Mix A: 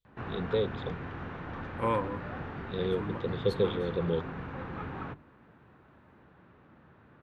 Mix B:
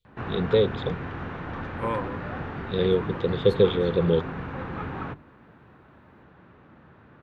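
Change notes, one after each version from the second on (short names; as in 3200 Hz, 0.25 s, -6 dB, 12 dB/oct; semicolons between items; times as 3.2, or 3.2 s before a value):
first voice +8.5 dB; background +5.5 dB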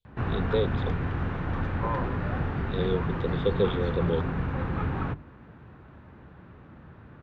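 first voice -6.0 dB; second voice: add band-pass 860 Hz, Q 1.6; background: add low shelf 130 Hz +12 dB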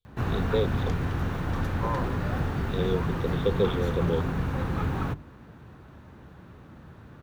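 background: remove Chebyshev low-pass 2400 Hz, order 2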